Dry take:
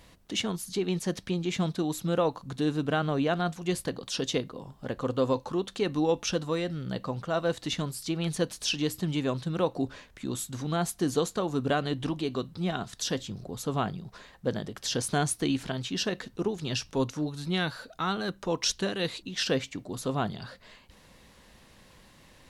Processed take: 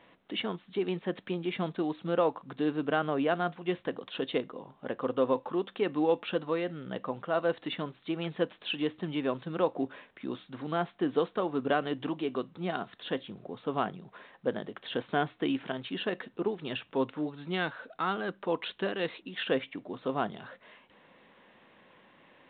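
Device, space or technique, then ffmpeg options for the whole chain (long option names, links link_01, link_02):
telephone: -af "highpass=250,lowpass=3000" -ar 8000 -c:a pcm_mulaw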